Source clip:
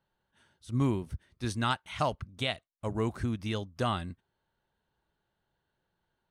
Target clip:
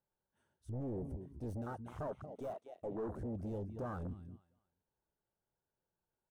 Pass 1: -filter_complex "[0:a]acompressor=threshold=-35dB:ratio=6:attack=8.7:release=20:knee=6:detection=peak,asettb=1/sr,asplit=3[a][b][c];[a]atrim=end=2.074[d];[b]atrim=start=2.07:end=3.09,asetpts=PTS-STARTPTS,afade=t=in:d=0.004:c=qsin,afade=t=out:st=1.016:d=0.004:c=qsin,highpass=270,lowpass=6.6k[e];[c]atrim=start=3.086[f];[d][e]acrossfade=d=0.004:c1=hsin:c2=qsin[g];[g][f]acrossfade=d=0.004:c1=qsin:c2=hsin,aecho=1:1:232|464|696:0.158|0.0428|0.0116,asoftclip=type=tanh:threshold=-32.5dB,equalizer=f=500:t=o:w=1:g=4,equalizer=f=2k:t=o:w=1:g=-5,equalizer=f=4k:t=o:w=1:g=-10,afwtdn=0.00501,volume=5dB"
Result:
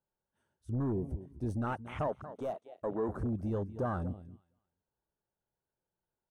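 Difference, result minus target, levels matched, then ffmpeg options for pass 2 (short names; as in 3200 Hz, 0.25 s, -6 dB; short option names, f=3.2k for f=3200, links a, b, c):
soft clip: distortion -8 dB
-filter_complex "[0:a]acompressor=threshold=-35dB:ratio=6:attack=8.7:release=20:knee=6:detection=peak,asettb=1/sr,asplit=3[a][b][c];[a]atrim=end=2.074[d];[b]atrim=start=2.07:end=3.09,asetpts=PTS-STARTPTS,afade=t=in:d=0.004:c=qsin,afade=t=out:st=1.016:d=0.004:c=qsin,highpass=270,lowpass=6.6k[e];[c]atrim=start=3.086[f];[d][e]acrossfade=d=0.004:c1=hsin:c2=qsin[g];[g][f]acrossfade=d=0.004:c1=qsin:c2=hsin,aecho=1:1:232|464|696:0.158|0.0428|0.0116,asoftclip=type=tanh:threshold=-44dB,equalizer=f=500:t=o:w=1:g=4,equalizer=f=2k:t=o:w=1:g=-5,equalizer=f=4k:t=o:w=1:g=-10,afwtdn=0.00501,volume=5dB"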